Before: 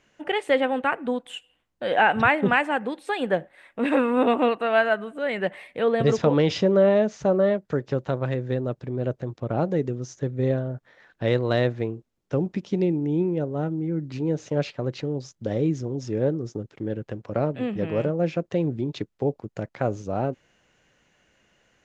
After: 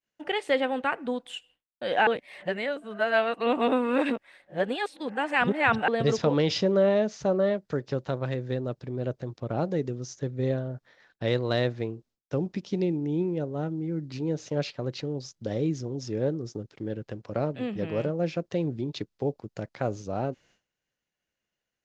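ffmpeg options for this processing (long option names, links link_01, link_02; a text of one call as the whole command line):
ffmpeg -i in.wav -filter_complex "[0:a]asplit=3[link_01][link_02][link_03];[link_01]atrim=end=2.072[link_04];[link_02]atrim=start=2.068:end=5.882,asetpts=PTS-STARTPTS,areverse[link_05];[link_03]atrim=start=5.878[link_06];[link_04][link_05]acrossfade=duration=0.004:curve1=hsin:curve2=hsin[link_07];[link_07][link_06]acrossfade=duration=0.004:curve1=hsin:curve2=hsin,agate=range=-33dB:threshold=-51dB:ratio=3:detection=peak,equalizer=frequency=4800:width_type=o:width=1:gain=7.5,volume=-4dB" out.wav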